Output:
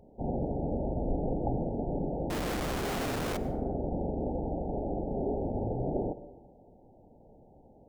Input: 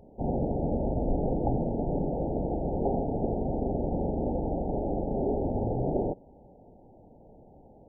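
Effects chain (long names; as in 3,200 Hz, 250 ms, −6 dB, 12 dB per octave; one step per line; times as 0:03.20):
0:02.30–0:03.37: sign of each sample alone
dense smooth reverb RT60 1 s, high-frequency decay 0.45×, pre-delay 80 ms, DRR 15 dB
level −3.5 dB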